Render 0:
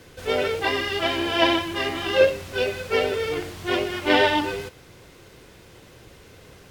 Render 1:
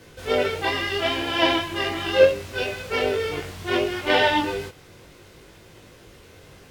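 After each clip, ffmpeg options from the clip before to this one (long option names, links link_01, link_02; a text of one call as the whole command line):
ffmpeg -i in.wav -af "flanger=delay=18.5:depth=2.8:speed=0.72,volume=3dB" out.wav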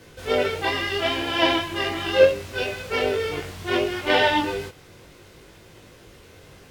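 ffmpeg -i in.wav -af anull out.wav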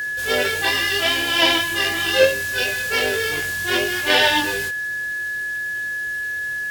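ffmpeg -i in.wav -af "aeval=exprs='val(0)+0.0501*sin(2*PI*1700*n/s)':channel_layout=same,crystalizer=i=5:c=0,volume=-1.5dB" out.wav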